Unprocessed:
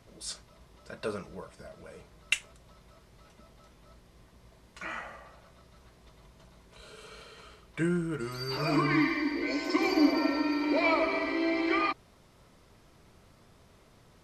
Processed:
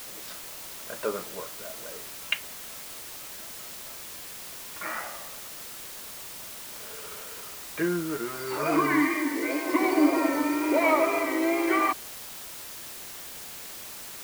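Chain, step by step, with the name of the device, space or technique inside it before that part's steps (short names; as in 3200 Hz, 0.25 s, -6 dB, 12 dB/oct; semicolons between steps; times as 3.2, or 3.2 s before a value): wax cylinder (BPF 300–2100 Hz; wow and flutter; white noise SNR 11 dB); 9.14–9.83 HPF 140 Hz 12 dB/oct; gain +5.5 dB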